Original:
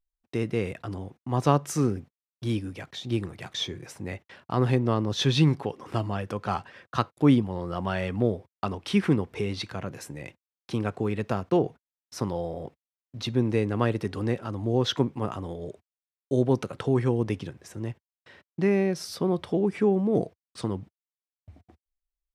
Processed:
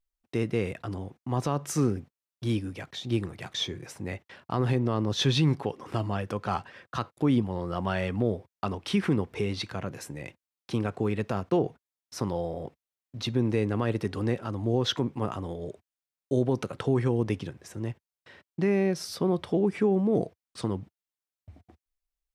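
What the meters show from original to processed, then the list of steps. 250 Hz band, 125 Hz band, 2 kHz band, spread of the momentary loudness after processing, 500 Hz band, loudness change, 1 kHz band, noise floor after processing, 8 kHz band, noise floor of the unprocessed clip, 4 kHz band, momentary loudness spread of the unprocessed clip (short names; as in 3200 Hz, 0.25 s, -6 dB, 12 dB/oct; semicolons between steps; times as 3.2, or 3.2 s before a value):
-1.5 dB, -1.5 dB, -1.0 dB, 12 LU, -1.5 dB, -1.5 dB, -2.5 dB, under -85 dBFS, 0.0 dB, under -85 dBFS, 0.0 dB, 14 LU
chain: limiter -15 dBFS, peak gain reduction 9.5 dB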